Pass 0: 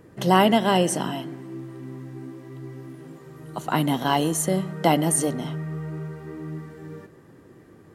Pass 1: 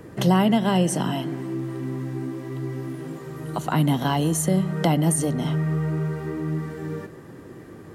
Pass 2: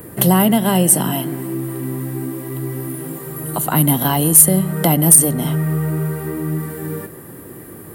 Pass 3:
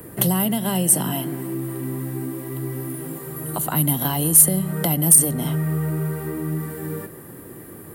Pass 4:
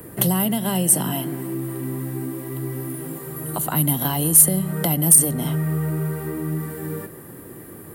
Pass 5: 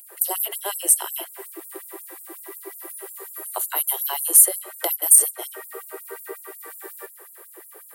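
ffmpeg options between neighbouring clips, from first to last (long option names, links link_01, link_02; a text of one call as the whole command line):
ffmpeg -i in.wav -filter_complex "[0:a]acrossover=split=180[link_01][link_02];[link_02]acompressor=threshold=-35dB:ratio=2.5[link_03];[link_01][link_03]amix=inputs=2:normalize=0,volume=8dB" out.wav
ffmpeg -i in.wav -af "aexciter=amount=15.5:drive=2.5:freq=8900,aeval=exprs='1.68*sin(PI/2*2.24*val(0)/1.68)':channel_layout=same,volume=-6dB" out.wav
ffmpeg -i in.wav -filter_complex "[0:a]acrossover=split=150|3000[link_01][link_02][link_03];[link_02]acompressor=threshold=-19dB:ratio=6[link_04];[link_01][link_04][link_03]amix=inputs=3:normalize=0,volume=-3.5dB" out.wav
ffmpeg -i in.wav -af anull out.wav
ffmpeg -i in.wav -af "afftfilt=real='re*gte(b*sr/1024,320*pow(7100/320,0.5+0.5*sin(2*PI*5.5*pts/sr)))':imag='im*gte(b*sr/1024,320*pow(7100/320,0.5+0.5*sin(2*PI*5.5*pts/sr)))':win_size=1024:overlap=0.75" out.wav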